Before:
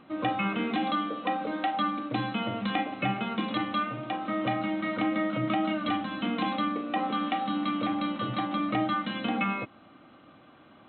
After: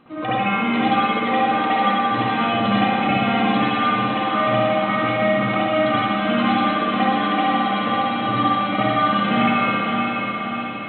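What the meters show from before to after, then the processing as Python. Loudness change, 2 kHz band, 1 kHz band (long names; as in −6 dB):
+10.5 dB, +12.0 dB, +12.0 dB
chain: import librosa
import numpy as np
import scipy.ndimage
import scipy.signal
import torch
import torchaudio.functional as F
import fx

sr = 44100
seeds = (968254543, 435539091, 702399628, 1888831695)

y = fx.echo_diffused(x, sr, ms=549, feedback_pct=59, wet_db=-4.0)
y = fx.rev_spring(y, sr, rt60_s=1.5, pass_ms=(59,), chirp_ms=65, drr_db=-9.5)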